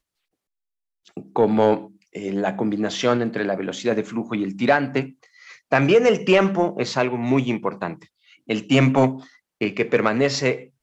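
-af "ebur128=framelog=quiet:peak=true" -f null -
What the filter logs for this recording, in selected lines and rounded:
Integrated loudness:
  I:         -21.1 LUFS
  Threshold: -31.8 LUFS
Loudness range:
  LRA:         3.2 LU
  Threshold: -41.8 LUFS
  LRA low:   -23.5 LUFS
  LRA high:  -20.3 LUFS
True peak:
  Peak:       -5.7 dBFS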